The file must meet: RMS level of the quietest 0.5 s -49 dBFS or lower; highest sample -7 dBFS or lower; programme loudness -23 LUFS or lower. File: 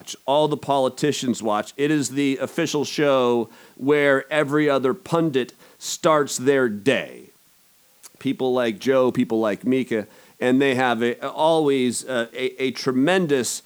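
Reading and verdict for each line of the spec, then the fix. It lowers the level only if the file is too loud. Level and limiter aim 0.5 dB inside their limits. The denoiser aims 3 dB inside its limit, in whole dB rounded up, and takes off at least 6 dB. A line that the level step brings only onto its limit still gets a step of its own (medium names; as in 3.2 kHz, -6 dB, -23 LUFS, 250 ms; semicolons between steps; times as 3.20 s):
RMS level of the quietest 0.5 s -57 dBFS: pass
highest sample -5.0 dBFS: fail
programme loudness -21.5 LUFS: fail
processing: trim -2 dB; peak limiter -7.5 dBFS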